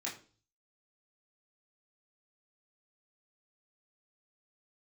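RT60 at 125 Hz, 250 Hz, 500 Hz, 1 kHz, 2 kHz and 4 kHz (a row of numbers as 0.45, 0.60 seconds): 0.70, 0.50, 0.45, 0.35, 0.35, 0.40 seconds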